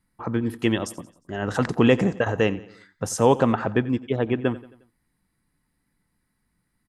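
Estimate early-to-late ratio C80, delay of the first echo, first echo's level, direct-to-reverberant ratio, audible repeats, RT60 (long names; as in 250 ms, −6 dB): no reverb audible, 89 ms, −19.0 dB, no reverb audible, 3, no reverb audible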